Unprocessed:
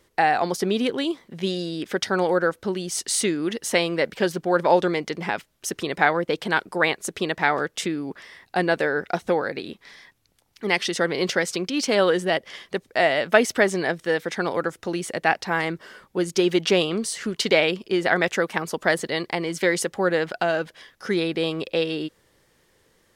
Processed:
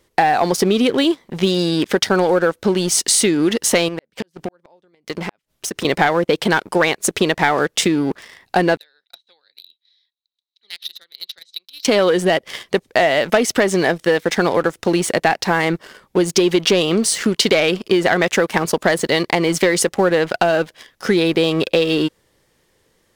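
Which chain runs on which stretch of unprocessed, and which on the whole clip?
3.88–5.85 s: inverted gate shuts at -14 dBFS, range -36 dB + compression 10:1, threshold -32 dBFS
8.77–11.85 s: transient shaper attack +4 dB, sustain -4 dB + band-pass filter 3.9 kHz, Q 18
whole clip: peaking EQ 1.5 kHz -2.5 dB; waveshaping leveller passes 2; compression, threshold -17 dBFS; trim +5 dB

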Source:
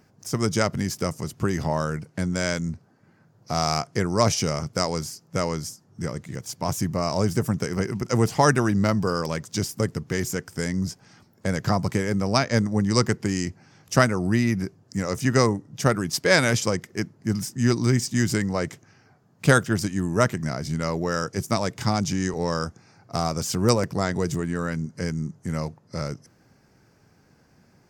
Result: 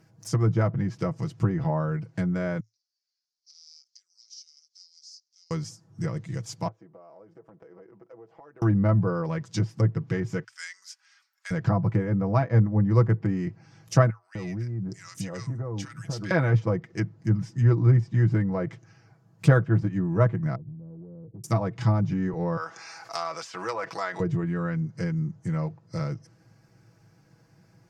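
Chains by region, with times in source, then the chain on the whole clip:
2.60–5.51 s: compression 10:1, threshold -35 dBFS + Butterworth band-pass 5 kHz, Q 2.6
6.68–8.62 s: ladder band-pass 590 Hz, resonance 30% + compression, threshold -43 dBFS
10.44–11.51 s: high-pass 1.4 kHz 24 dB/octave + treble shelf 7.9 kHz -9 dB + short-mantissa float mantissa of 6-bit
14.10–16.31 s: compression 10:1, threshold -27 dBFS + bands offset in time highs, lows 250 ms, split 1.2 kHz
20.55–21.44 s: Gaussian low-pass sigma 18 samples + compression 10:1, threshold -38 dBFS
22.57–24.20 s: high-pass 970 Hz + level flattener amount 50%
whole clip: low-pass that closes with the level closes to 1.3 kHz, closed at -20.5 dBFS; peaking EQ 110 Hz +12.5 dB 0.4 oct; comb 6.1 ms, depth 69%; trim -4.5 dB

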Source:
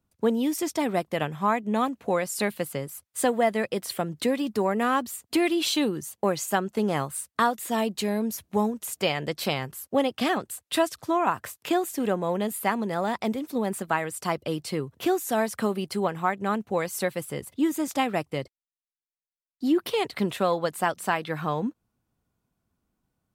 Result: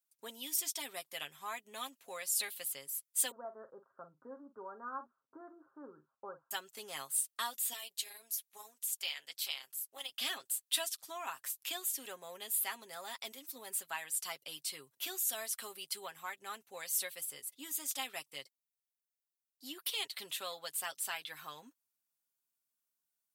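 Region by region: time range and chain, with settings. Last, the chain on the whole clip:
3.31–6.51 s: steep low-pass 1.5 kHz 96 dB/octave + band-stop 730 Hz, Q 7.9 + doubling 46 ms -12 dB
7.73–10.12 s: high-pass 1 kHz 6 dB/octave + AM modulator 230 Hz, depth 60%
whole clip: differentiator; comb 7.4 ms, depth 53%; dynamic bell 3.3 kHz, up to +6 dB, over -53 dBFS, Q 1.9; trim -2 dB

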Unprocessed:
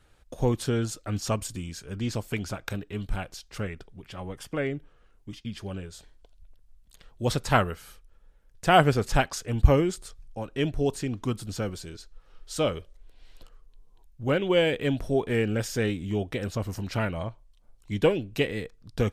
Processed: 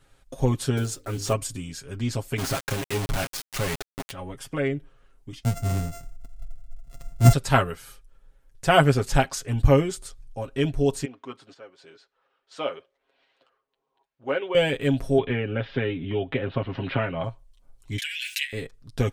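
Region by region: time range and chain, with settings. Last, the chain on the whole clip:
0.77–1.34 s: block-companded coder 5-bit + peaking EQ 400 Hz +7 dB 0.52 oct + hum notches 50/100/150/200/250/300/350/400/450/500 Hz
2.38–4.11 s: low-pass 6.4 kHz + peaking EQ 77 Hz -3 dB 1.3 oct + companded quantiser 2-bit
5.43–7.33 s: sorted samples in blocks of 64 samples + tone controls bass +14 dB, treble +4 dB
11.05–14.55 s: random-step tremolo 4.1 Hz, depth 75% + band-pass 460–2700 Hz
15.18–17.24 s: steep low-pass 3.5 kHz 48 dB/octave + bass shelf 75 Hz -9 dB + three bands compressed up and down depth 100%
17.98–18.53 s: steep high-pass 1.6 kHz 96 dB/octave + swell ahead of each attack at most 23 dB/s
whole clip: peaking EQ 9.1 kHz +3 dB 0.77 oct; comb 7.4 ms

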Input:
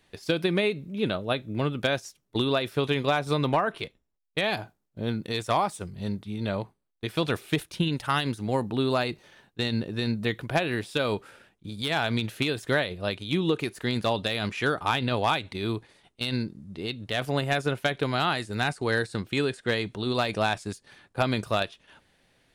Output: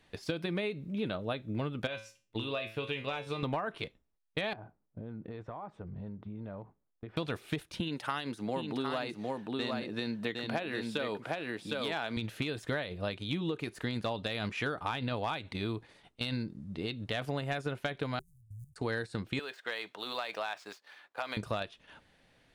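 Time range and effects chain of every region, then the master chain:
1.87–3.43 s: peaking EQ 2.7 kHz +10.5 dB 0.48 oct + feedback comb 110 Hz, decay 0.31 s, mix 80%
4.53–7.17 s: low-pass 1.3 kHz + compression 16:1, threshold -38 dBFS
7.80–12.17 s: high-pass 210 Hz + delay 759 ms -4.5 dB
18.19–18.76 s: median filter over 41 samples + inverse Chebyshev band-stop 300–3200 Hz, stop band 60 dB + level held to a coarse grid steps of 15 dB
19.39–21.37 s: median filter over 5 samples + high-pass 690 Hz + compression 2:1, threshold -31 dBFS
whole clip: treble shelf 6.1 kHz -8 dB; band-stop 380 Hz, Q 12; compression 4:1, threshold -32 dBFS

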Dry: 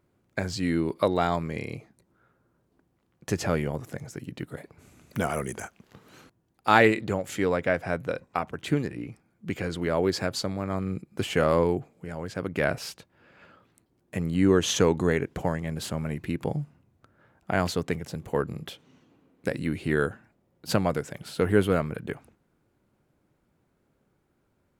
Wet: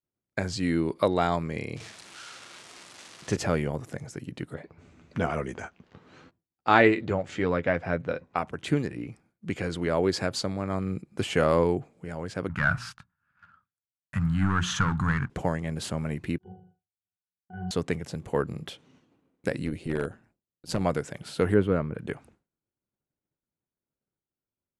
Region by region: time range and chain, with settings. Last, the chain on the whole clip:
1.76–3.37 s: zero-crossing glitches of -24.5 dBFS + distance through air 96 m + flutter echo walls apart 7.6 m, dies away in 0.37 s
4.54–8.37 s: distance through air 130 m + doubling 12 ms -8.5 dB
12.49–15.30 s: hum notches 60/120/180/240/300/360 Hz + waveshaping leveller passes 2 + FFT filter 130 Hz 0 dB, 220 Hz -7 dB, 420 Hz -29 dB, 1.4 kHz +5 dB, 2.1 kHz -9 dB, 11 kHz -15 dB
16.38–17.71 s: pitch-class resonator F#, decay 0.51 s + flutter echo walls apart 6.7 m, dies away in 0.56 s
19.65–20.81 s: peaking EQ 1.6 kHz -5 dB 2.4 oct + AM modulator 170 Hz, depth 45% + hard clipper -19 dBFS
21.54–21.99 s: low-pass 1.1 kHz 6 dB/octave + peaking EQ 720 Hz -6 dB 0.3 oct
whole clip: expander -55 dBFS; steep low-pass 11 kHz 36 dB/octave

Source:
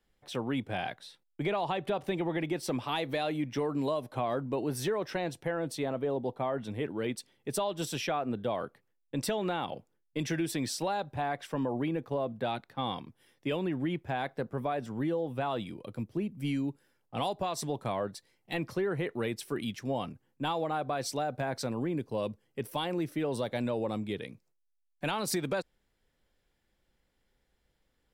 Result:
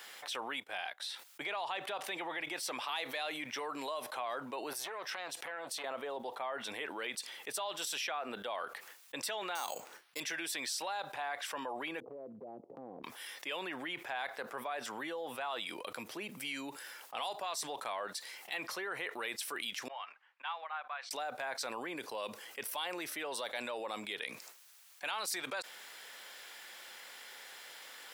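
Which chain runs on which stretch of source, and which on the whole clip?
0.53–1.00 s: treble shelf 12 kHz +6.5 dB + upward expansion 2.5:1, over -54 dBFS
4.73–5.84 s: compression 5:1, threshold -39 dBFS + transformer saturation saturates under 900 Hz
9.55–10.20 s: distance through air 120 m + careless resampling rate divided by 6×, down none, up hold
12.00–13.04 s: inverse Chebyshev low-pass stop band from 1.5 kHz, stop band 60 dB + compression 2.5:1, threshold -55 dBFS
19.88–21.11 s: Butterworth band-pass 1.6 kHz, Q 0.81 + upward expansion 2.5:1, over -47 dBFS
whole clip: high-pass 1 kHz 12 dB/octave; level flattener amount 70%; trim -4 dB

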